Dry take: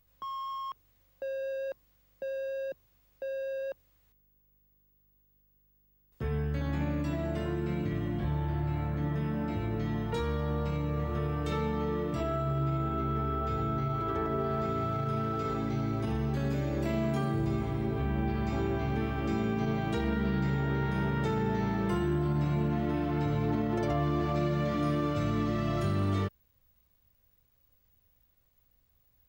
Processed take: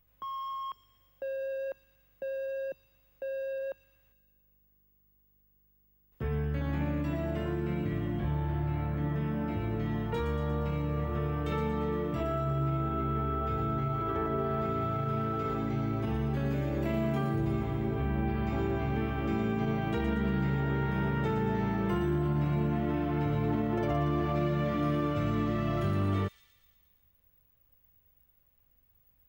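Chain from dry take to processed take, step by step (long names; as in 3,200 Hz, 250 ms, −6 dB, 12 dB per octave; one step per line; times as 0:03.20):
flat-topped bell 6,500 Hz −8 dB
on a send: delay with a high-pass on its return 117 ms, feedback 62%, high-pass 5,200 Hz, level −3.5 dB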